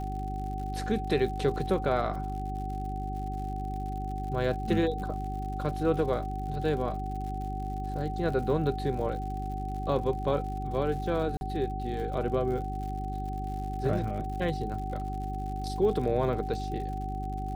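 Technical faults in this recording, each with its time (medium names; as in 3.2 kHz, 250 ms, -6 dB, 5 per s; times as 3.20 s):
crackle 100 per s -39 dBFS
hum 50 Hz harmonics 8 -35 dBFS
whine 760 Hz -36 dBFS
11.37–11.41 s: dropout 41 ms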